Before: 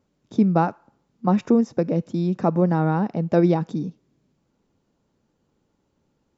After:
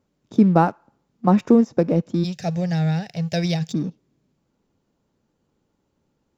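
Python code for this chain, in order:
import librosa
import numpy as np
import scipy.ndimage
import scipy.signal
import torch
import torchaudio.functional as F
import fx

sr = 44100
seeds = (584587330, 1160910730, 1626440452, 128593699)

p1 = fx.curve_eq(x, sr, hz=(160.0, 240.0, 720.0, 1100.0, 1700.0, 4800.0), db=(0, -23, -5, -29, 2, 14), at=(2.23, 3.72), fade=0.02)
p2 = np.sign(p1) * np.maximum(np.abs(p1) - 10.0 ** (-38.0 / 20.0), 0.0)
p3 = p1 + F.gain(torch.from_numpy(p2), -3.5).numpy()
y = F.gain(torch.from_numpy(p3), -1.0).numpy()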